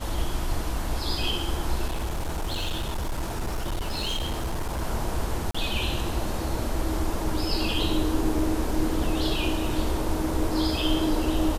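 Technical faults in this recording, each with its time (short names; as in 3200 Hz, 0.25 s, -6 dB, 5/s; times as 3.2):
1.87–4.83 clipped -24.5 dBFS
5.51–5.54 gap 35 ms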